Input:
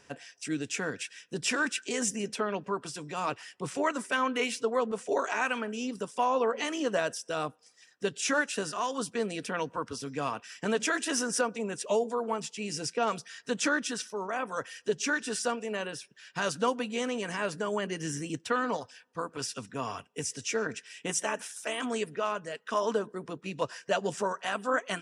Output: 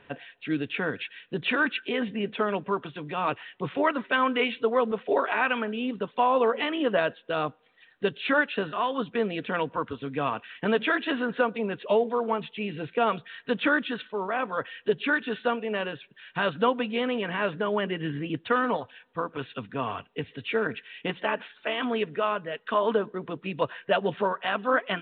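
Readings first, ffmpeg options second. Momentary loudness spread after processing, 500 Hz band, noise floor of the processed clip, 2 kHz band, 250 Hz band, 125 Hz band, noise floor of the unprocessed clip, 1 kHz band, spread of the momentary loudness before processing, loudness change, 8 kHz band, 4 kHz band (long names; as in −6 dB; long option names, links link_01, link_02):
9 LU, +4.5 dB, −60 dBFS, +4.5 dB, +4.5 dB, +4.5 dB, −62 dBFS, +4.5 dB, 8 LU, +4.0 dB, below −40 dB, +2.0 dB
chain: -af "volume=4.5dB" -ar 8000 -c:a pcm_mulaw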